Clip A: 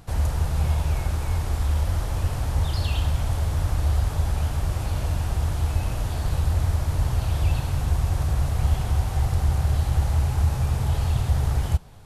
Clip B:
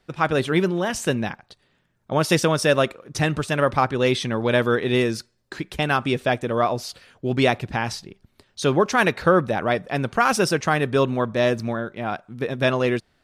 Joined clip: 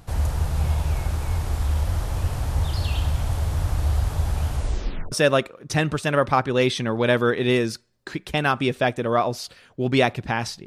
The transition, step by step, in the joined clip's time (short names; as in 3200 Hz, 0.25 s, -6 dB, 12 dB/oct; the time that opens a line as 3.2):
clip A
4.52 tape stop 0.60 s
5.12 switch to clip B from 2.57 s